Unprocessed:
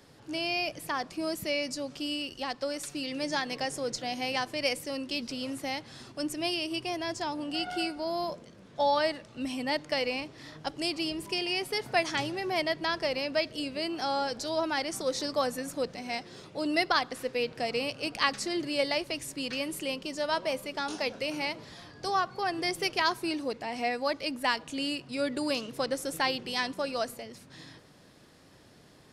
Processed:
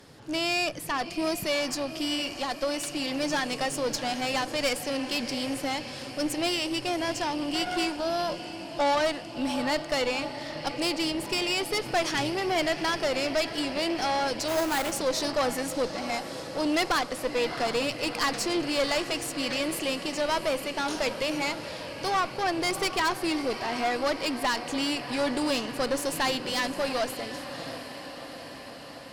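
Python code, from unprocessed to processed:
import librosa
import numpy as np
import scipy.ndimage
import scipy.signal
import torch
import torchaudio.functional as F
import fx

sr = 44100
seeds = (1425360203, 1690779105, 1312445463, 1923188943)

y = fx.echo_diffused(x, sr, ms=700, feedback_pct=70, wet_db=-14.0)
y = fx.tube_stage(y, sr, drive_db=28.0, bias=0.55)
y = fx.sample_hold(y, sr, seeds[0], rate_hz=5800.0, jitter_pct=20, at=(14.48, 14.92))
y = F.gain(torch.from_numpy(y), 7.5).numpy()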